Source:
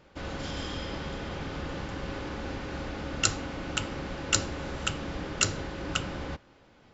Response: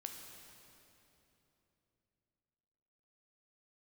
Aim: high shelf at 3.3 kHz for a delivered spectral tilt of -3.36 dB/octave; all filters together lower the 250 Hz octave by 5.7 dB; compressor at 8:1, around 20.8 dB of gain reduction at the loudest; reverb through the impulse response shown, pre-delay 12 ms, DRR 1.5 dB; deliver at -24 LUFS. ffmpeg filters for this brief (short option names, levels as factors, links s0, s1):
-filter_complex "[0:a]equalizer=f=250:t=o:g=-8,highshelf=f=3300:g=4.5,acompressor=threshold=0.0112:ratio=8,asplit=2[s0][s1];[1:a]atrim=start_sample=2205,adelay=12[s2];[s1][s2]afir=irnorm=-1:irlink=0,volume=1.19[s3];[s0][s3]amix=inputs=2:normalize=0,volume=7.08"